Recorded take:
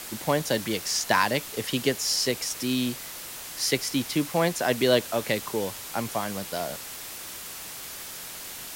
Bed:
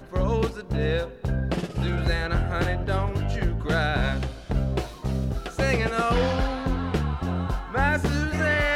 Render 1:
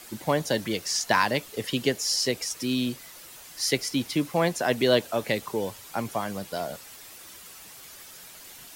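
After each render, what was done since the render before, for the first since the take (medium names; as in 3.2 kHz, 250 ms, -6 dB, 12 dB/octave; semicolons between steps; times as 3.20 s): noise reduction 9 dB, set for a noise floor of -39 dBFS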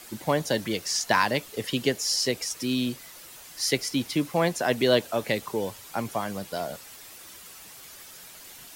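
no audible change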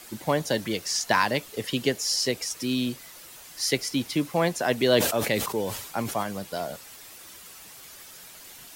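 4.83–6.23 s: decay stretcher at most 61 dB/s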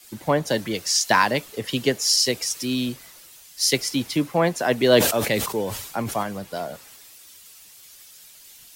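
in parallel at +1.5 dB: compression, threshold -33 dBFS, peak gain reduction 16 dB; on the sum: three bands expanded up and down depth 70%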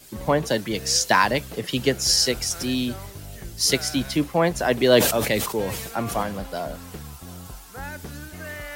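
add bed -13 dB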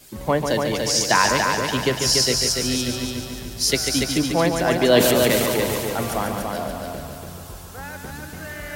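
multi-head delay 144 ms, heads first and second, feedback 53%, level -6.5 dB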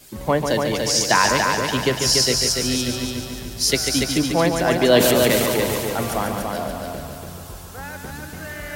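trim +1 dB; peak limiter -3 dBFS, peak gain reduction 1.5 dB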